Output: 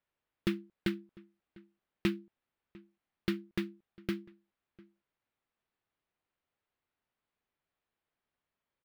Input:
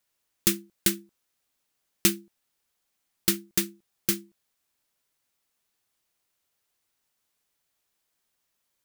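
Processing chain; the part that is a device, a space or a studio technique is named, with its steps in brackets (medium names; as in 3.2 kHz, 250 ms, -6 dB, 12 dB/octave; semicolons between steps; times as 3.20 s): shout across a valley (distance through air 410 m; echo from a far wall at 120 m, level -23 dB); trim -2.5 dB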